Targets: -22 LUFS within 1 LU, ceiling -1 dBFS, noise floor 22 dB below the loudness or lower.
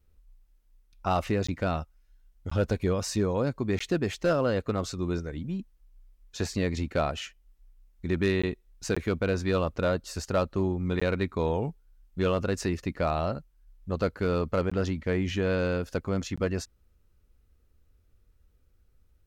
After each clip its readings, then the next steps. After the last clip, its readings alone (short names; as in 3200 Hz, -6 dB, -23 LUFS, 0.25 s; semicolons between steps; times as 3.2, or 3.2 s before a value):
clipped 0.3%; flat tops at -17.0 dBFS; dropouts 8; longest dropout 15 ms; loudness -29.5 LUFS; peak -17.0 dBFS; loudness target -22.0 LUFS
-> clip repair -17 dBFS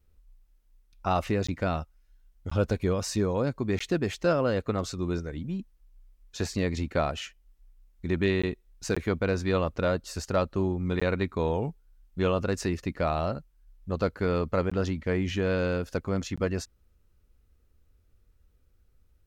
clipped 0.0%; dropouts 8; longest dropout 15 ms
-> interpolate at 1.47/2.5/3.79/8.42/8.95/11/14.7/16.36, 15 ms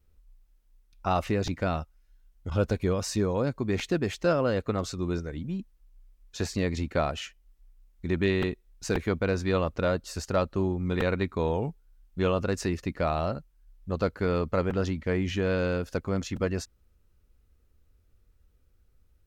dropouts 0; loudness -29.0 LUFS; peak -12.0 dBFS; loudness target -22.0 LUFS
-> gain +7 dB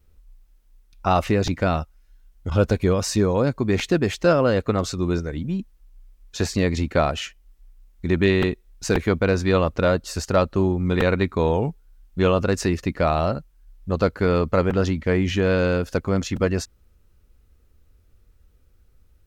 loudness -22.0 LUFS; peak -5.0 dBFS; noise floor -58 dBFS